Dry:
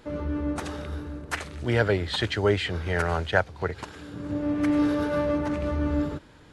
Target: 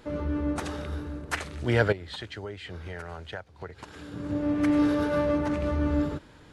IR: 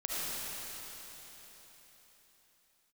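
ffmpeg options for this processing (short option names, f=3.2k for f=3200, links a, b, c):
-filter_complex "[0:a]asettb=1/sr,asplit=3[a][b][c];[a]atrim=end=1.924[d];[b]atrim=start=1.92:end=4.12,asetpts=PTS-STARTPTS,afade=t=in:d=0.004:c=qsin,afade=t=out:st=2.196:d=0.004:c=qsin,acompressor=threshold=-37dB:ratio=5[e];[c]atrim=start=4.116[f];[d][e]acrossfade=d=0.004:c1=hsin:c2=qsin[g];[g][f]acrossfade=d=0.004:c1=qsin:c2=hsin"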